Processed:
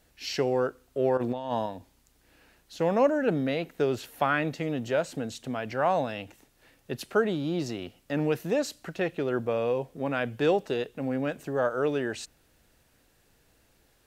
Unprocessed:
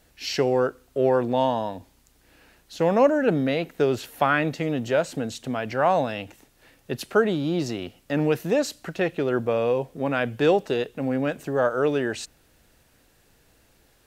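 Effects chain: 1.17–1.66 s: compressor with a negative ratio -25 dBFS, ratio -0.5; trim -4.5 dB

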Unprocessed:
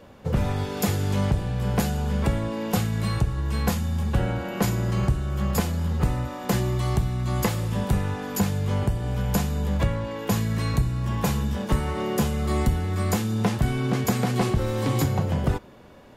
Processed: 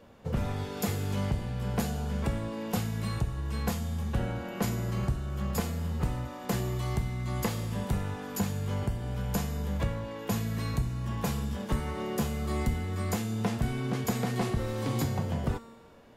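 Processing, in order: feedback comb 230 Hz, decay 1.3 s, mix 80%; trim +6.5 dB

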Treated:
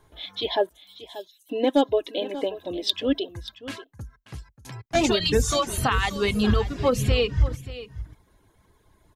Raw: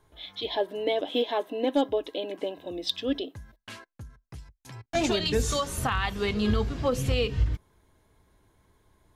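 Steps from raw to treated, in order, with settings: reverb removal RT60 0.74 s; 0.69–1.49 s: inverse Chebyshev high-pass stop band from 1 kHz, stop band 80 dB; on a send: delay 584 ms -15 dB; on the sum: trim +5 dB

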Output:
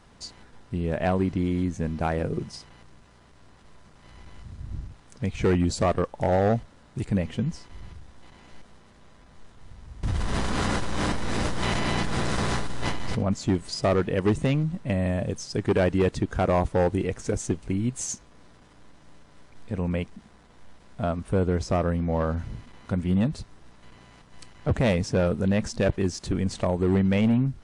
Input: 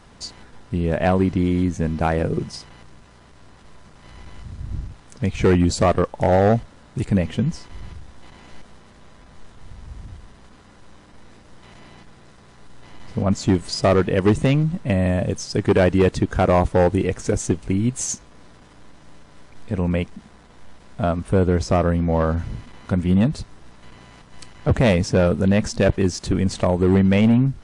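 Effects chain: 10.03–13.27 s: level flattener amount 100%; trim -6 dB

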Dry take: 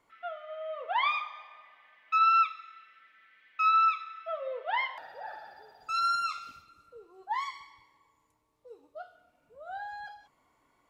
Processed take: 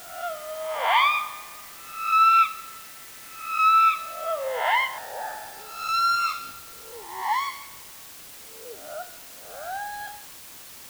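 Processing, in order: reverse spectral sustain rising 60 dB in 0.67 s; in parallel at -11.5 dB: word length cut 6-bit, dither triangular; on the sum: trim +3.5 dB

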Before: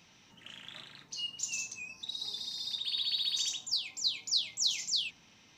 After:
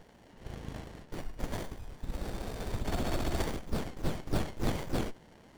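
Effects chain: peaking EQ 1.4 kHz +9.5 dB 2.4 oct; sliding maximum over 33 samples; trim +3 dB

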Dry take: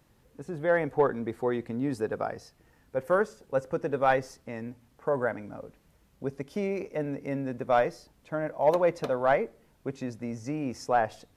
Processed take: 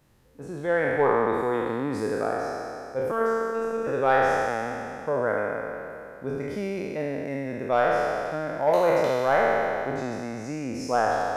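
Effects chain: spectral sustain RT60 2.71 s; 3.11–3.87 s: robot voice 226 Hz; trim -1.5 dB

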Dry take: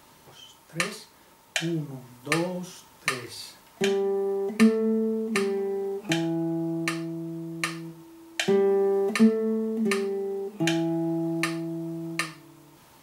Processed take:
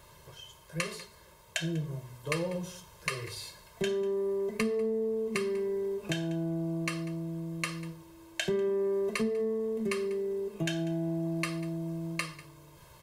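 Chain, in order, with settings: bass shelf 140 Hz +10.5 dB; band-stop 5.6 kHz, Q 24; comb 1.9 ms, depth 85%; on a send: delay 194 ms -21 dB; on the sum: compression 2.5:1, threshold -25 dBFS, peak gain reduction 7 dB; trim -4.5 dB

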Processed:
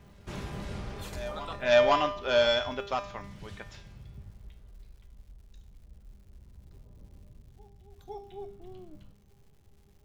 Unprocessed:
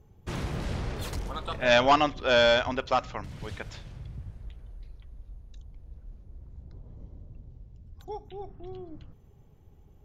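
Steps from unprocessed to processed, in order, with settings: feedback comb 200 Hz, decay 0.56 s, harmonics all, mix 80%; reverse echo 506 ms -18 dB; crackle 280 per s -63 dBFS; trim +6.5 dB

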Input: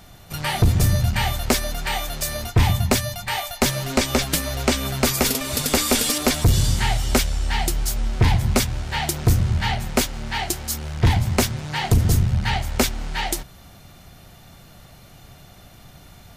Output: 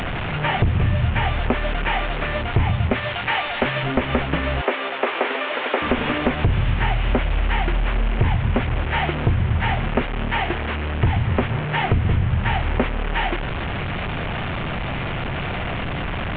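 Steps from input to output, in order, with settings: one-bit delta coder 16 kbps, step -23.5 dBFS; 2.93–3.83 s: tilt EQ +2 dB/octave; 4.61–5.82 s: high-pass 360 Hz 24 dB/octave; compression, threshold -20 dBFS, peak gain reduction 8 dB; trim +4.5 dB

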